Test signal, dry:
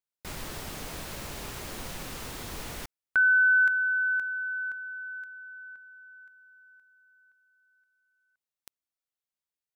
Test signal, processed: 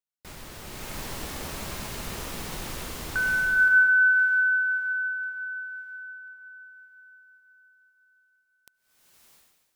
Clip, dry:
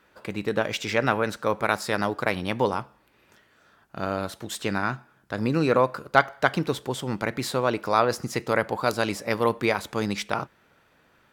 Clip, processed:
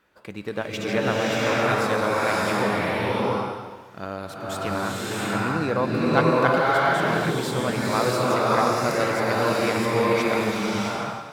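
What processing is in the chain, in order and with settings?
bloom reverb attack 0.67 s, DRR -7 dB; gain -4.5 dB

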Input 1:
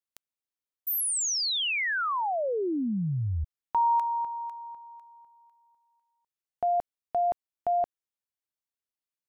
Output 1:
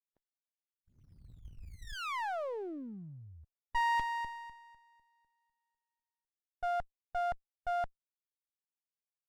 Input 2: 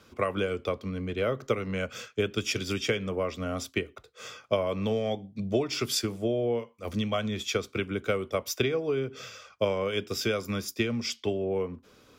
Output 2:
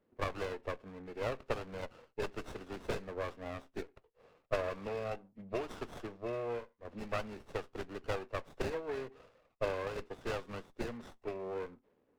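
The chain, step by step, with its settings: nonlinear frequency compression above 1700 Hz 1.5:1; high shelf 5300 Hz -11 dB; low-pass opened by the level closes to 390 Hz, open at -17.5 dBFS; differentiator; running maximum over 17 samples; gain +14.5 dB

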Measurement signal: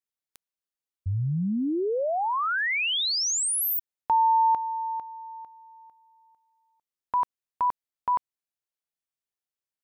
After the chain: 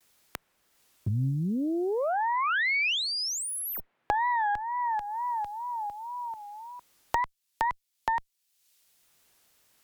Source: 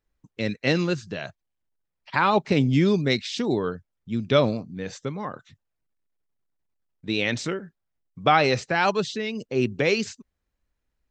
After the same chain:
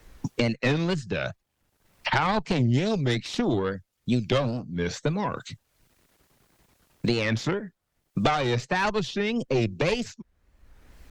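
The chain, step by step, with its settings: dynamic EQ 130 Hz, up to +7 dB, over -43 dBFS, Q 2.9; wow and flutter 150 cents; added harmonics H 4 -12 dB, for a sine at -4.5 dBFS; three-band squash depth 100%; gain -2.5 dB

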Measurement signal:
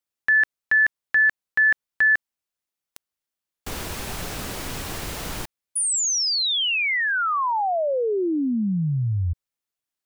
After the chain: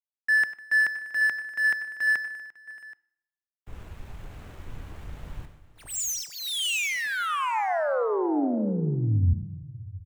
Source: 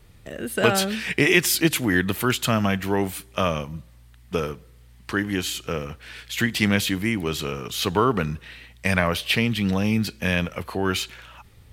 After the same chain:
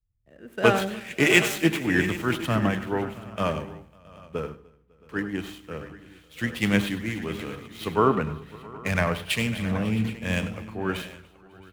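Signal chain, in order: median filter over 9 samples; on a send: tapped delay 94/99/302/551/671/777 ms -18/-13.5/-16.5/-15.5/-12.5/-12 dB; on the sum: FDN reverb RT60 2 s, low-frequency decay 1.35×, high-frequency decay 0.75×, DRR 16.5 dB; three-band expander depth 100%; gain -4.5 dB

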